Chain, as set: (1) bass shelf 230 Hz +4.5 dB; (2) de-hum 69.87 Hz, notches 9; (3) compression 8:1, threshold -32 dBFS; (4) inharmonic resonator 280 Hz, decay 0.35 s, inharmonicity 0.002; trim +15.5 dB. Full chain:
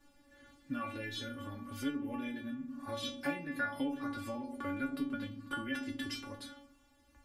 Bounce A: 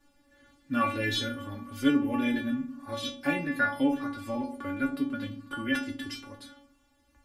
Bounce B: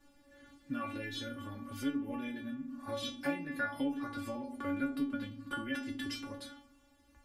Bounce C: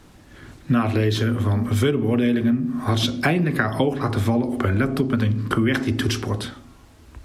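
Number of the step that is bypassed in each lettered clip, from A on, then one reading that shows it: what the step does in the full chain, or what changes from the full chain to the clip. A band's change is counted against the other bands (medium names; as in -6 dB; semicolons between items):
3, mean gain reduction 6.0 dB; 2, momentary loudness spread change +1 LU; 4, 125 Hz band +13.0 dB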